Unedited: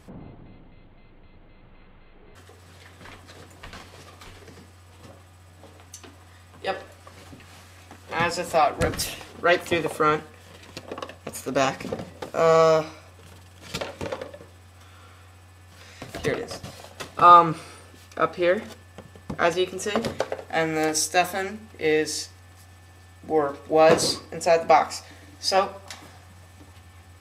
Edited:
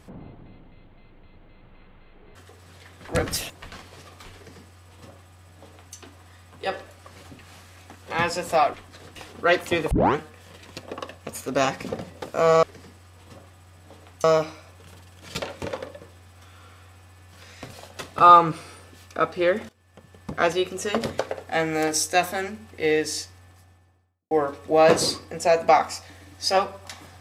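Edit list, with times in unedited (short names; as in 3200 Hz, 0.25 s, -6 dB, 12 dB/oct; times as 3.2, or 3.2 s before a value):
3.09–3.51 swap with 8.75–9.16
4.36–5.97 copy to 12.63
9.91 tape start 0.25 s
16.12–16.74 cut
18.7–19.37 fade in, from -23 dB
22.2–23.32 studio fade out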